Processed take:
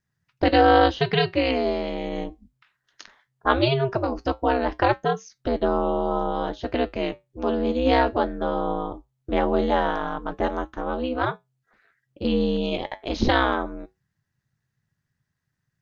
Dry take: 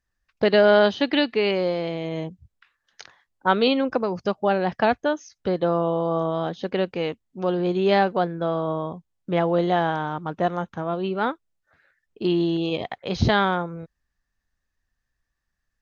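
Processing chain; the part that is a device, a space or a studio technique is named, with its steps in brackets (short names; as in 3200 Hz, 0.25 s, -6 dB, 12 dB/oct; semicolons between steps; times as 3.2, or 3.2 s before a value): alien voice (ring modulator 130 Hz; flange 0.19 Hz, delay 7.7 ms, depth 2.3 ms, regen -72%); gain +7 dB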